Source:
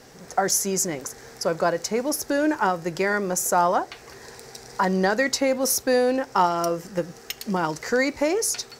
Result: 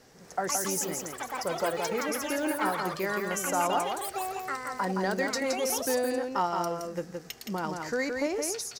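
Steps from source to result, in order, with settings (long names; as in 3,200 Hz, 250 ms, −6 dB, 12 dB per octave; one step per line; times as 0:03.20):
delay with pitch and tempo change per echo 239 ms, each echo +7 semitones, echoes 3, each echo −6 dB
single-tap delay 169 ms −4.5 dB
level −8.5 dB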